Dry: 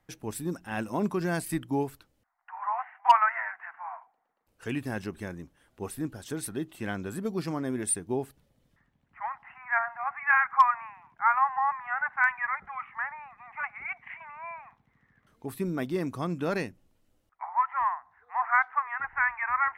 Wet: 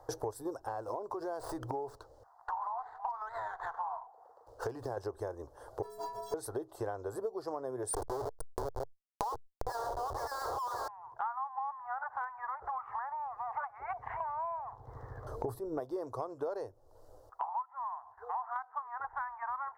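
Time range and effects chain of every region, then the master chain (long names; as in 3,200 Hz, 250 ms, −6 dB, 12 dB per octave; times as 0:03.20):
0:00.68–0:04.97: downward compressor, threshold −35 dBFS + windowed peak hold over 3 samples
0:05.82–0:06.34: each half-wave held at its own peak + mains-hum notches 50/100/150/200/250/300/350/400/450 Hz + stiff-string resonator 200 Hz, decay 0.69 s, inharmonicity 0.03
0:07.93–0:10.88: multi-tap delay 90/472/648 ms −16/−13/−17 dB + comparator with hysteresis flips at −39 dBFS + envelope flattener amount 70%
0:12.03–0:13.06: upward compression, threshold −28 dBFS + highs frequency-modulated by the lows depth 0.39 ms
0:13.90–0:15.80: low-shelf EQ 320 Hz +11.5 dB + compressor whose output falls as the input rises −29 dBFS
0:17.62–0:18.56: noise gate with hold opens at −51 dBFS, closes at −53 dBFS + downward compressor 1.5 to 1, threshold −45 dBFS
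whole clip: drawn EQ curve 120 Hz 0 dB, 180 Hz −25 dB, 450 Hz +11 dB, 990 Hz +10 dB, 1,700 Hz −5 dB, 2,400 Hz −24 dB, 4,700 Hz −1 dB, 8,300 Hz −5 dB; downward compressor 12 to 1, threshold −46 dBFS; parametric band 1,800 Hz −2.5 dB 1.5 octaves; level +11.5 dB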